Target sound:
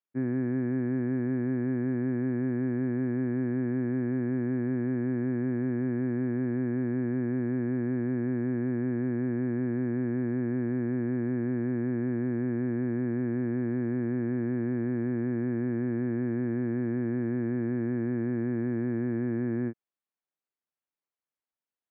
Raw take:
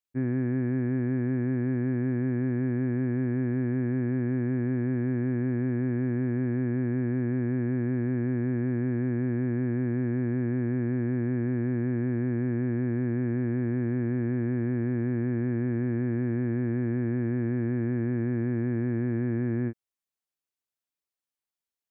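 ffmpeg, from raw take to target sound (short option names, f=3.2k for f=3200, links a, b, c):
-af "highpass=150,lowpass=2.1k"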